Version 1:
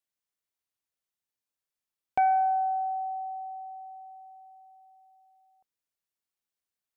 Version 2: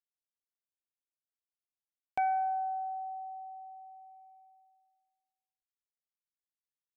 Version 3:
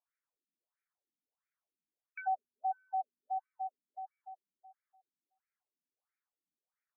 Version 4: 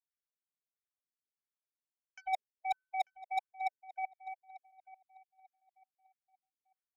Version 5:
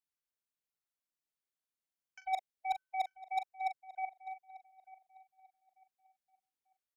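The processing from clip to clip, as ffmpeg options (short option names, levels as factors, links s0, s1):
-af "anlmdn=0.0398,highshelf=f=2200:g=9,volume=0.422"
-af "areverse,acompressor=threshold=0.00794:ratio=5,areverse,afftfilt=real='re*between(b*sr/1024,220*pow(1800/220,0.5+0.5*sin(2*PI*1.5*pts/sr))/1.41,220*pow(1800/220,0.5+0.5*sin(2*PI*1.5*pts/sr))*1.41)':imag='im*between(b*sr/1024,220*pow(1800/220,0.5+0.5*sin(2*PI*1.5*pts/sr))/1.41,220*pow(1800/220,0.5+0.5*sin(2*PI*1.5*pts/sr))*1.41)':win_size=1024:overlap=0.75,volume=3.76"
-filter_complex "[0:a]areverse,acompressor=threshold=0.00708:ratio=16,areverse,aeval=exprs='0.0112*(cos(1*acos(clip(val(0)/0.0112,-1,1)))-cos(1*PI/2))+0.00355*(cos(3*acos(clip(val(0)/0.0112,-1,1)))-cos(3*PI/2))':c=same,asplit=2[s0][s1];[s1]adelay=892,lowpass=f=2100:p=1,volume=0.141,asplit=2[s2][s3];[s3]adelay=892,lowpass=f=2100:p=1,volume=0.31,asplit=2[s4][s5];[s5]adelay=892,lowpass=f=2100:p=1,volume=0.31[s6];[s0][s2][s4][s6]amix=inputs=4:normalize=0,volume=4.22"
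-filter_complex "[0:a]asplit=2[s0][s1];[s1]adelay=41,volume=0.316[s2];[s0][s2]amix=inputs=2:normalize=0,volume=0.891"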